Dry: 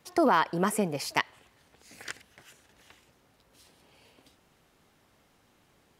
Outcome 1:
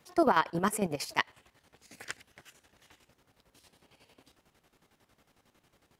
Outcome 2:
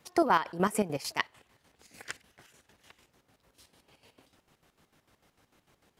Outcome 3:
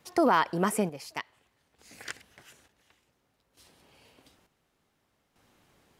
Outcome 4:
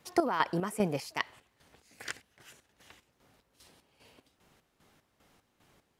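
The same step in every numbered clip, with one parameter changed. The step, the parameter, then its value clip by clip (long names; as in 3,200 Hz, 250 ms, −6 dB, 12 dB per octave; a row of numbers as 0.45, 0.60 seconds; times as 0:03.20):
square-wave tremolo, speed: 11, 6.7, 0.56, 2.5 Hertz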